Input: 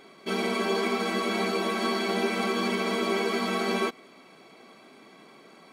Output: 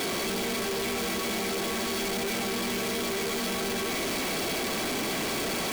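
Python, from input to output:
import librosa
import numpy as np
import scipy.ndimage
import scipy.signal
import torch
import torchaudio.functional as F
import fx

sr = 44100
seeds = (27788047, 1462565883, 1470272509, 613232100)

y = np.sign(x) * np.sqrt(np.mean(np.square(x)))
y = fx.peak_eq(y, sr, hz=1200.0, db=-4.5, octaves=0.89)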